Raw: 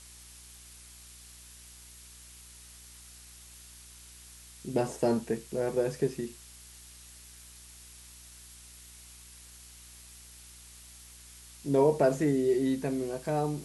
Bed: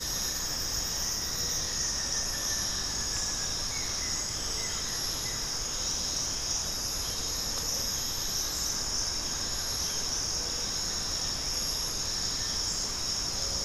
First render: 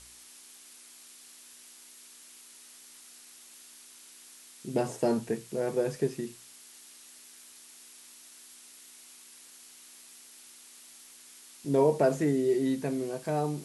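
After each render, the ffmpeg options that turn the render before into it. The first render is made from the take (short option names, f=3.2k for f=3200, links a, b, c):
-af "bandreject=f=60:t=h:w=4,bandreject=f=120:t=h:w=4,bandreject=f=180:t=h:w=4"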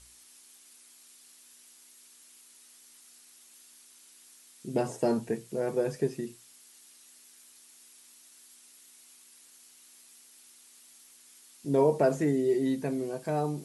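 -af "afftdn=nr=6:nf=-53"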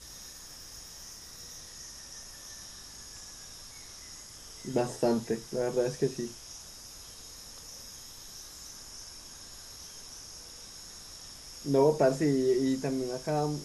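-filter_complex "[1:a]volume=-15.5dB[a];[0:a][a]amix=inputs=2:normalize=0"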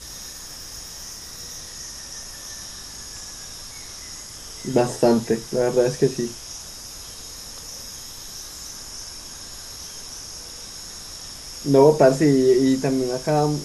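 -af "volume=10dB"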